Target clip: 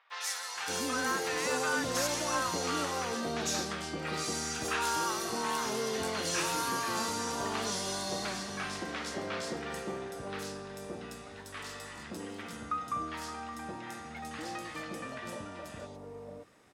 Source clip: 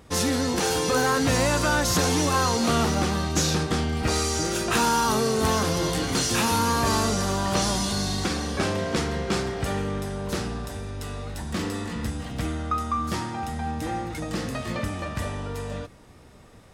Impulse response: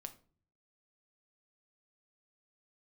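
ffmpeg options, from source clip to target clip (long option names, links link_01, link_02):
-filter_complex "[0:a]highpass=frequency=590:poles=1,highshelf=frequency=7400:gain=-5.5,acrossover=split=840|3700[link_01][link_02][link_03];[link_03]adelay=100[link_04];[link_01]adelay=570[link_05];[link_05][link_02][link_04]amix=inputs=3:normalize=0,volume=-4.5dB"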